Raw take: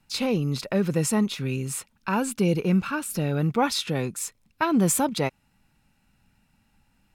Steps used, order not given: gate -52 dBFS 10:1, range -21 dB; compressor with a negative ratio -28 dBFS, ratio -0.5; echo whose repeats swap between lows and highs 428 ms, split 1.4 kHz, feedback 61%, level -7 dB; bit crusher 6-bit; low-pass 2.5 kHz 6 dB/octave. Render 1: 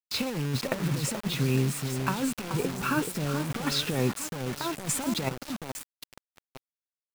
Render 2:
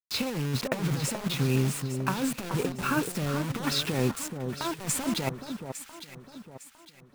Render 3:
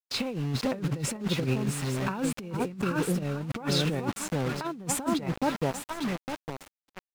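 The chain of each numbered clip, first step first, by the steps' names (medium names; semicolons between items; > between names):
low-pass > compressor with a negative ratio > echo whose repeats swap between lows and highs > bit crusher > gate; gate > low-pass > compressor with a negative ratio > bit crusher > echo whose repeats swap between lows and highs; echo whose repeats swap between lows and highs > bit crusher > low-pass > gate > compressor with a negative ratio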